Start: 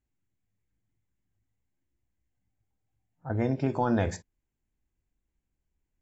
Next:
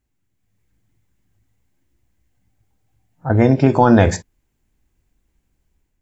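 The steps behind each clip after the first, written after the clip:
automatic gain control gain up to 6 dB
level +8.5 dB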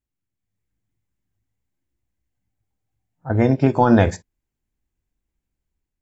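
expander for the loud parts 1.5 to 1, over −30 dBFS
level −1.5 dB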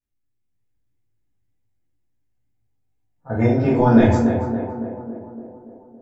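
tape delay 282 ms, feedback 70%, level −4.5 dB, low-pass 1,300 Hz
rectangular room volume 76 cubic metres, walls mixed, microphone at 1.8 metres
level −10 dB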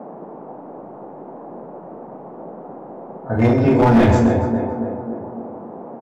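hard clipping −12 dBFS, distortion −12 dB
single-tap delay 131 ms −11.5 dB
noise in a band 160–830 Hz −39 dBFS
level +3.5 dB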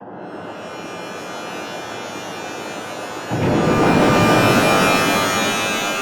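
cochlear-implant simulation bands 8
soft clipping −16 dBFS, distortion −8 dB
reverb with rising layers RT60 3.4 s, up +12 semitones, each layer −2 dB, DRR −0.5 dB
level +1 dB

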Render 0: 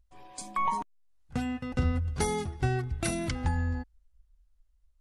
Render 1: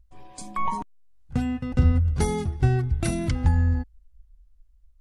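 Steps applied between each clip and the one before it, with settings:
low-shelf EQ 290 Hz +10 dB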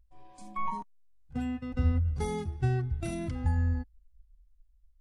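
harmonic and percussive parts rebalanced percussive −12 dB
level −6 dB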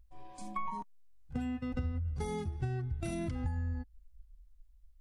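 downward compressor 5 to 1, threshold −36 dBFS, peak gain reduction 14 dB
level +3 dB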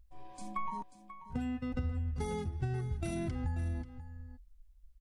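single-tap delay 537 ms −13 dB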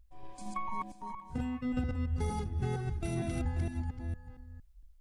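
delay that plays each chunk backwards 230 ms, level −1.5 dB

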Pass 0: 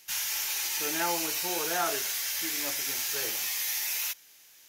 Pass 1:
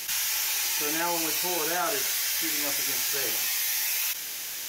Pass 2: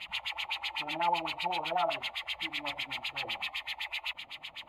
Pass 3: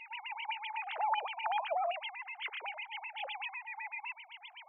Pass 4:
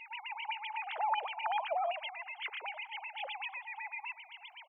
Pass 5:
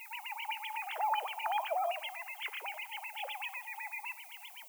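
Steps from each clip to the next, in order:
envelope flattener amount 70%
dynamic equaliser 800 Hz, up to +4 dB, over −46 dBFS, Q 2.6; phaser with its sweep stopped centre 1,600 Hz, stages 6; auto-filter low-pass sine 7.9 Hz 510–3,900 Hz; level −2.5 dB
three sine waves on the formant tracks; in parallel at +2 dB: compressor whose output falls as the input rises −32 dBFS, ratio −0.5; on the sum: level −8 dB
single-tap delay 322 ms −21 dB
background noise violet −54 dBFS; on a send at −17 dB: convolution reverb RT60 0.55 s, pre-delay 5 ms

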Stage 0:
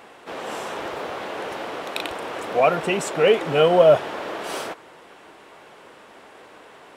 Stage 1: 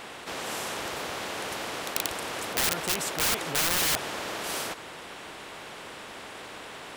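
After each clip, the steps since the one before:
wrap-around overflow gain 14.5 dB
every bin compressed towards the loudest bin 2 to 1
level +7 dB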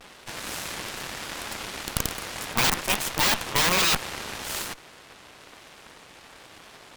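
pitch vibrato 1.1 Hz 78 cents
harmonic generator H 3 −23 dB, 7 −16 dB, 8 −7 dB, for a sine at −7.5 dBFS

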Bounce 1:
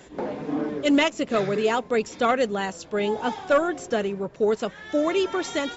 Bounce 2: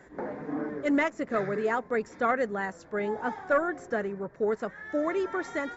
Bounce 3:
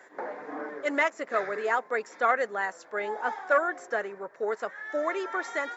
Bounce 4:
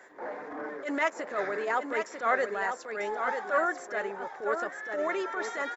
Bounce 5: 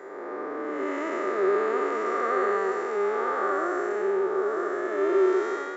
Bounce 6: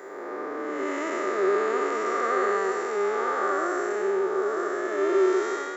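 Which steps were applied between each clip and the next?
high shelf with overshoot 2,300 Hz −7.5 dB, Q 3; level −6 dB
high-pass filter 580 Hz 12 dB per octave; level +3.5 dB
transient designer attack −10 dB, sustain +2 dB; on a send: single-tap delay 945 ms −6.5 dB
spectrum smeared in time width 392 ms; hollow resonant body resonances 380/1,200 Hz, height 17 dB, ringing for 60 ms; level +3 dB
high-shelf EQ 4,300 Hz +12 dB

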